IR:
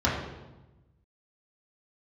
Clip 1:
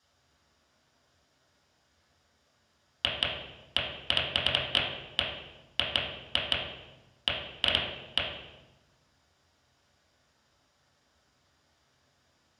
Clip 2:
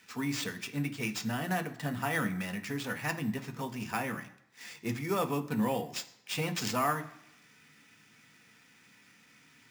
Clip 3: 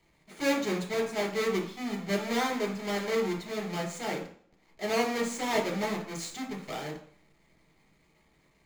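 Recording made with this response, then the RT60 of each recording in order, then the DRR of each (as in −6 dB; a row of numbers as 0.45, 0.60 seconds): 1; 1.1 s, non-exponential decay, 0.50 s; −6.5, 6.0, 0.0 decibels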